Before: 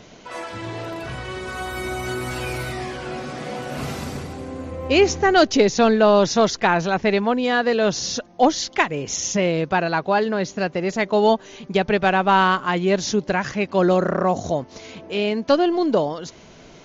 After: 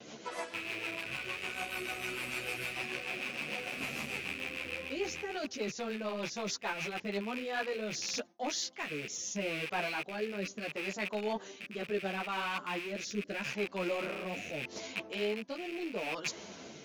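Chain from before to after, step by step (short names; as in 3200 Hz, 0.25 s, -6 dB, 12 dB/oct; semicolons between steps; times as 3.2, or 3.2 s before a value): rattling part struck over -38 dBFS, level -12 dBFS; gate with hold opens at -38 dBFS; high shelf 9300 Hz +9.5 dB; reverse; compressor 6:1, threshold -30 dBFS, peak gain reduction 18.5 dB; reverse; Bessel high-pass 200 Hz, order 2; in parallel at -10 dB: hard clip -32.5 dBFS, distortion -8 dB; on the sum: rotary speaker horn 6.7 Hz, later 0.75 Hz, at 6.97; ensemble effect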